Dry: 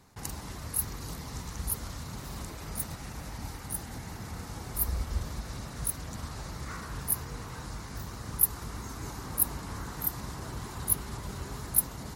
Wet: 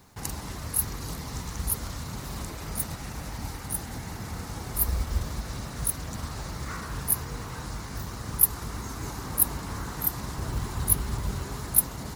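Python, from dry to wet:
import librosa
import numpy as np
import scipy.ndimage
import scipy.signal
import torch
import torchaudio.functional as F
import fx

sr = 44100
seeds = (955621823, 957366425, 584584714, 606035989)

y = fx.low_shelf(x, sr, hz=110.0, db=8.5, at=(10.38, 11.39))
y = fx.quant_companded(y, sr, bits=6)
y = y * librosa.db_to_amplitude(4.0)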